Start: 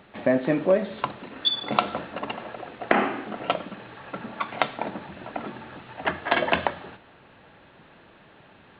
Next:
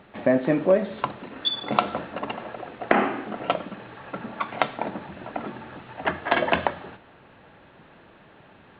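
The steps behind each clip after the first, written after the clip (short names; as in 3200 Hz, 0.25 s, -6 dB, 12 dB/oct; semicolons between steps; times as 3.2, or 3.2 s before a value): high shelf 3300 Hz -6.5 dB; gain +1.5 dB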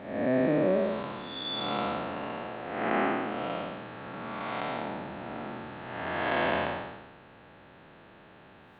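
time blur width 0.296 s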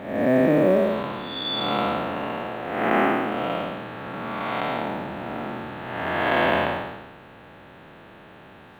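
companded quantiser 8-bit; gain +7 dB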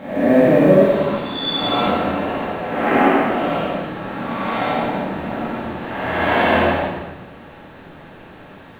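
reverb RT60 0.85 s, pre-delay 4 ms, DRR -5.5 dB; gain -1.5 dB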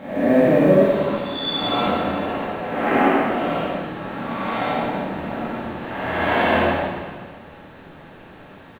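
echo 0.507 s -19.5 dB; gain -2.5 dB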